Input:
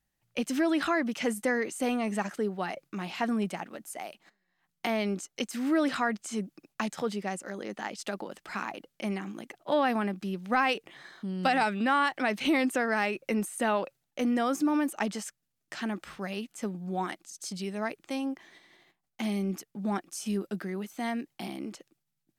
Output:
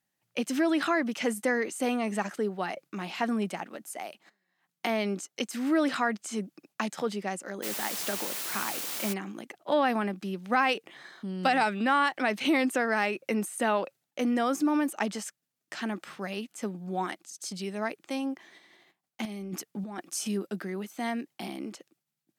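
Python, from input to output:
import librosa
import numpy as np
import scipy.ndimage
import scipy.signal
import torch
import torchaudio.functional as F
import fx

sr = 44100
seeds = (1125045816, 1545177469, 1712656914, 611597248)

y = fx.quant_dither(x, sr, seeds[0], bits=6, dither='triangular', at=(7.62, 9.12), fade=0.02)
y = scipy.signal.sosfilt(scipy.signal.butter(2, 170.0, 'highpass', fs=sr, output='sos'), y)
y = fx.over_compress(y, sr, threshold_db=-37.0, ratio=-1.0, at=(19.25, 20.28))
y = y * 10.0 ** (1.0 / 20.0)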